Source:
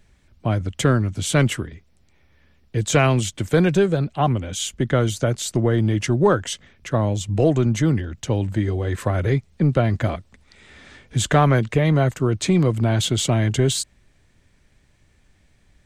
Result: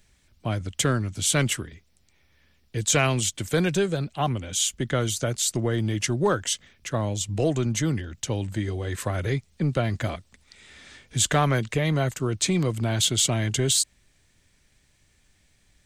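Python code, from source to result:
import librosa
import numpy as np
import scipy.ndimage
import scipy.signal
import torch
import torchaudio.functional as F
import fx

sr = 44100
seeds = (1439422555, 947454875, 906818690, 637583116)

y = fx.high_shelf(x, sr, hz=2600.0, db=11.5)
y = y * librosa.db_to_amplitude(-6.5)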